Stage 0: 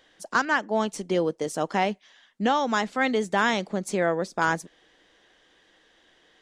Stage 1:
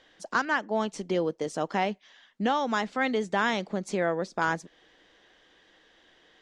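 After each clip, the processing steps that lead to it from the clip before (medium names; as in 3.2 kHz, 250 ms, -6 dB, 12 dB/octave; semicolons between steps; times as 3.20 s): low-pass 6.4 kHz 12 dB/octave; in parallel at -2.5 dB: compression, threshold -33 dBFS, peak gain reduction 14.5 dB; on the sum: trim -4.5 dB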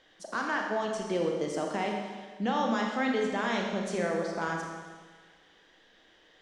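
peak limiter -18.5 dBFS, peak gain reduction 5.5 dB; Schroeder reverb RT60 1.5 s, combs from 27 ms, DRR 0.5 dB; trim -3 dB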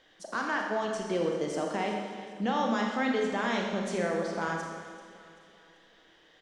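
feedback delay 387 ms, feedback 46%, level -16.5 dB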